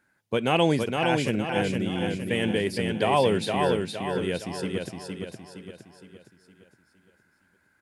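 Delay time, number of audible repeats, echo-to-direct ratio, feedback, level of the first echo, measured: 0.464 s, 5, -3.0 dB, 46%, -4.0 dB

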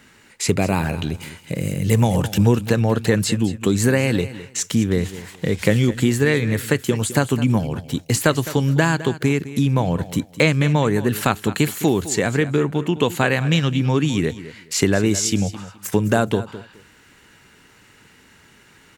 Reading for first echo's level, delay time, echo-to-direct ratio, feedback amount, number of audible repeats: -15.0 dB, 0.21 s, -15.0 dB, 21%, 2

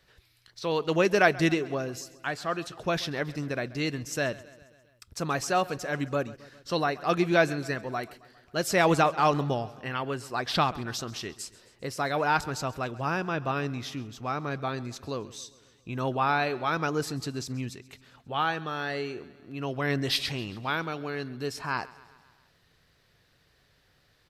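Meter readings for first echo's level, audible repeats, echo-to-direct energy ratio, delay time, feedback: -20.0 dB, 4, -18.0 dB, 0.134 s, 60%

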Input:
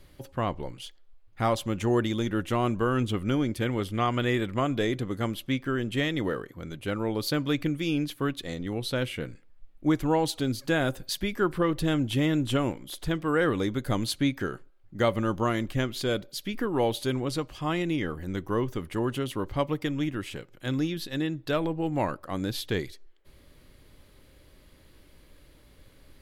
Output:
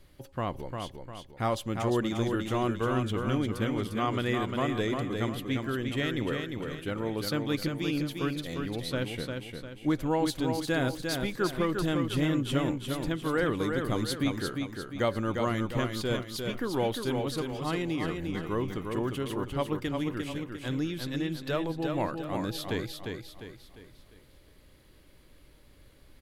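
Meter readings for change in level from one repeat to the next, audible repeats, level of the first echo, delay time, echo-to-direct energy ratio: -7.5 dB, 4, -5.0 dB, 0.351 s, -4.0 dB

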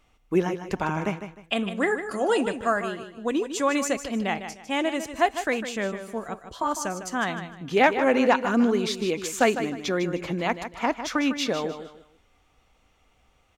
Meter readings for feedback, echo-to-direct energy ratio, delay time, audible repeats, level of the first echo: 29%, -9.5 dB, 0.153 s, 3, -10.0 dB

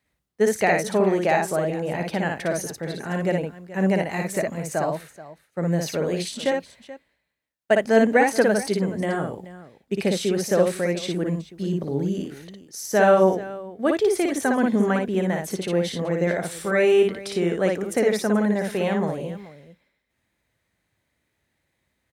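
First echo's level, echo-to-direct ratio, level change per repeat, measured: -3.0 dB, -3.0 dB, no steady repeat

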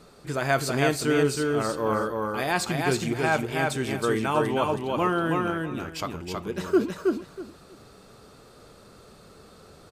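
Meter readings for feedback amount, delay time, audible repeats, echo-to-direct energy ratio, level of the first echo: 20%, 0.321 s, 3, -3.0 dB, -3.0 dB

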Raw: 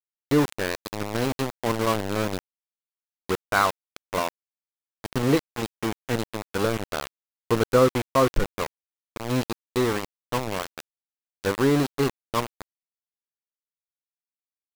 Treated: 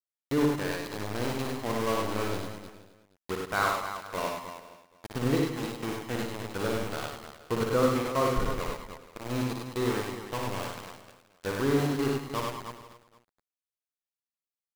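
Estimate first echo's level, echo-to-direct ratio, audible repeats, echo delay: -4.0 dB, 1.0 dB, 11, 58 ms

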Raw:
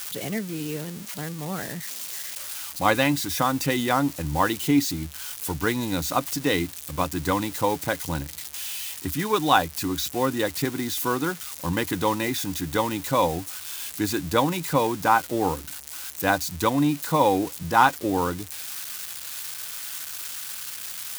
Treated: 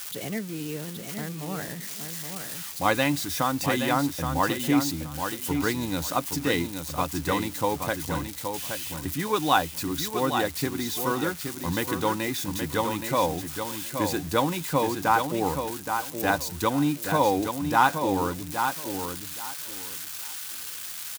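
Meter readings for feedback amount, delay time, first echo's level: 21%, 0.822 s, -6.5 dB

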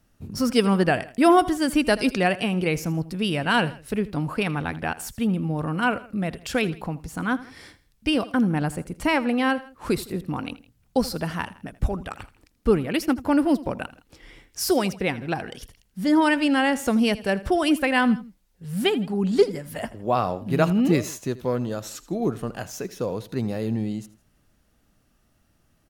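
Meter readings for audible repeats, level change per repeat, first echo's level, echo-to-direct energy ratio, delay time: 2, -6.5 dB, -18.0 dB, -17.0 dB, 81 ms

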